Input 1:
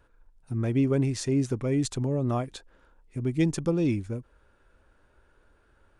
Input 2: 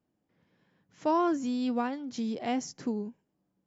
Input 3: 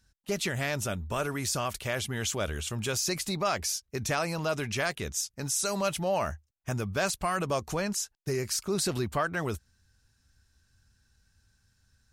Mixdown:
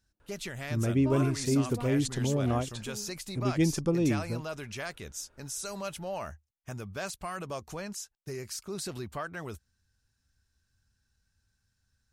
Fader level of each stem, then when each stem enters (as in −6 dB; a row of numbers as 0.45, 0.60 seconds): −1.5, −11.5, −8.0 decibels; 0.20, 0.00, 0.00 seconds